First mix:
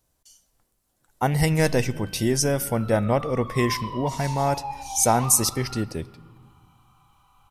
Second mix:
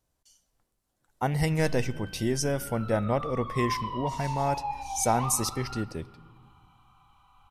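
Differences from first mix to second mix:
speech −5.0 dB
master: add high-shelf EQ 7,700 Hz −7 dB

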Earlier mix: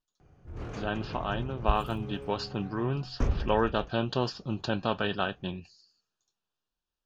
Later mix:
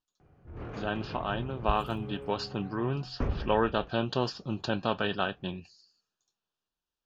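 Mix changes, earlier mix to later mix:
first sound: add low-pass filter 2,700 Hz 12 dB per octave
second sound −3.5 dB
master: add low-shelf EQ 62 Hz −7.5 dB

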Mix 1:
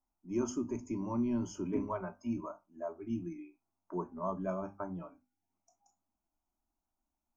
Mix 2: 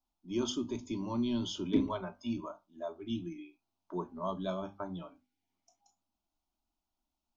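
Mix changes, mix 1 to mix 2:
background +7.5 dB
master: remove Butterworth band-reject 3,700 Hz, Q 0.98

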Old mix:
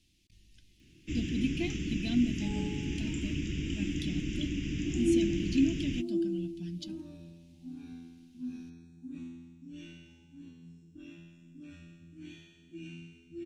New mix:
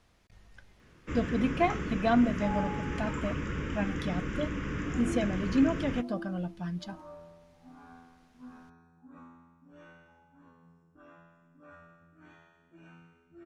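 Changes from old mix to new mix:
speech +4.0 dB
second sound −8.5 dB
master: remove drawn EQ curve 220 Hz 0 dB, 330 Hz +4 dB, 480 Hz −19 dB, 760 Hz −22 dB, 1,200 Hz −29 dB, 2,700 Hz +6 dB

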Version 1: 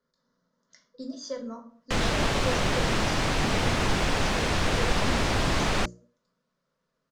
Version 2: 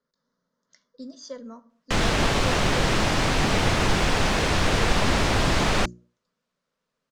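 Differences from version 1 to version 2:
speech: send −10.0 dB
background +3.5 dB

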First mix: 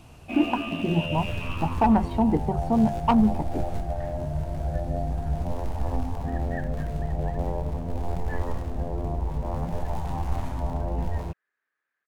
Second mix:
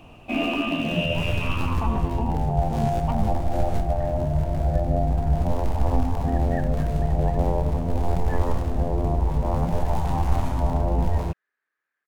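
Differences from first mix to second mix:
speech −11.5 dB
first sound +6.0 dB

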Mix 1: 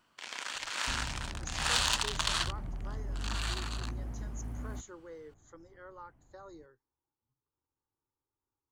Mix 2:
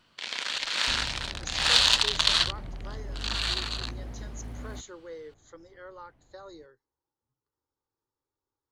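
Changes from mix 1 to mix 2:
first sound: add bass and treble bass +10 dB, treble −1 dB
master: add graphic EQ with 10 bands 500 Hz +6 dB, 2,000 Hz +4 dB, 4,000 Hz +12 dB

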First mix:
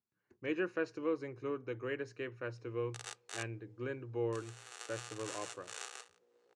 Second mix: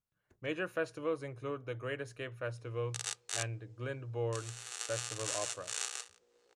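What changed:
speech: remove loudspeaker in its box 130–6,000 Hz, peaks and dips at 150 Hz −5 dB, 230 Hz +5 dB, 360 Hz +7 dB, 630 Hz −9 dB, 1,300 Hz −3 dB, 3,400 Hz −10 dB
background: add high-shelf EQ 2,600 Hz +11.5 dB

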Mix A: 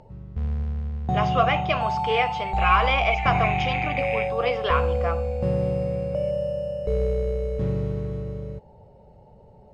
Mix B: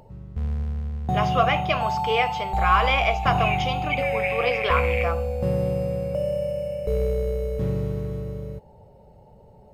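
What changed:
second sound: entry +0.80 s
master: remove high-frequency loss of the air 69 metres

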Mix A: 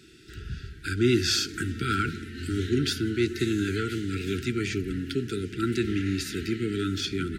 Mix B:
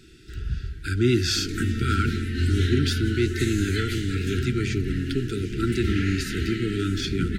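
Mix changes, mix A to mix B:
background +8.0 dB
master: remove high-pass filter 160 Hz 6 dB per octave

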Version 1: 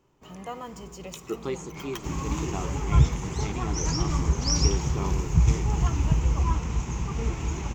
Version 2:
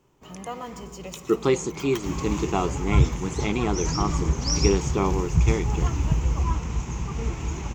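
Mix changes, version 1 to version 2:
speech +10.5 dB
first sound: send +10.5 dB

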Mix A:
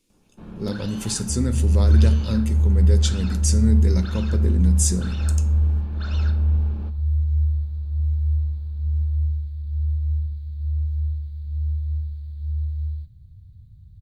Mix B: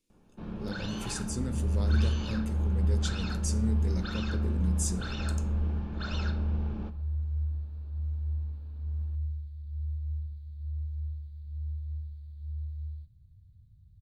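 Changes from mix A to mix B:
speech −11.0 dB
second sound −11.0 dB

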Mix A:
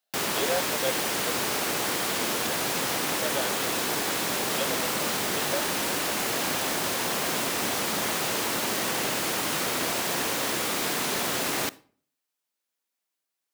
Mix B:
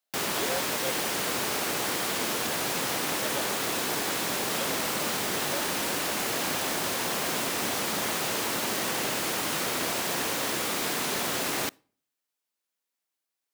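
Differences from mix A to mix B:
speech −6.0 dB
background: send −10.0 dB

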